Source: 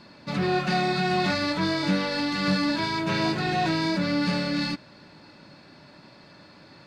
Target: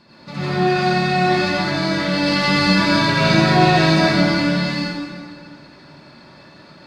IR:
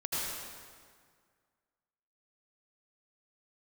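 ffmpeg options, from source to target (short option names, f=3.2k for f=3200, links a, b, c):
-filter_complex "[0:a]asettb=1/sr,asplit=3[a][b][c];[a]atrim=end=2.134[d];[b]atrim=start=2.13:end=4.22,asetpts=PTS-STARTPTS,afade=t=in:d=0.004:c=qsin,afade=t=out:st=2.086:d=0.004:c=qsin,acontrast=29[e];[c]atrim=start=4.216[f];[d][e]acrossfade=d=0.004:c1=hsin:c2=qsin[g];[g][f]acrossfade=d=0.004:c1=qsin:c2=hsin[h];[1:a]atrim=start_sample=2205[i];[h][i]afir=irnorm=-1:irlink=0"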